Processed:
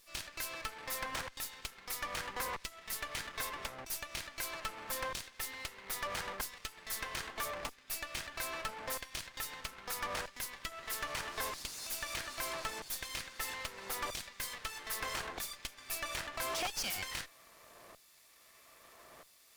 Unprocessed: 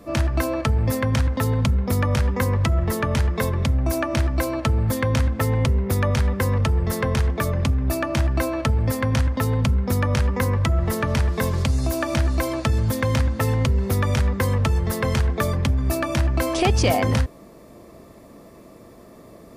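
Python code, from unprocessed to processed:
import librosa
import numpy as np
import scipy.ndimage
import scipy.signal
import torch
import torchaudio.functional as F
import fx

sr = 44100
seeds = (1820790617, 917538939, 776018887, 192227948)

y = fx.filter_lfo_highpass(x, sr, shape='saw_down', hz=0.78, low_hz=800.0, high_hz=3900.0, q=0.88)
y = np.maximum(y, 0.0)
y = fx.tube_stage(y, sr, drive_db=26.0, bias=0.55)
y = y * 10.0 ** (5.0 / 20.0)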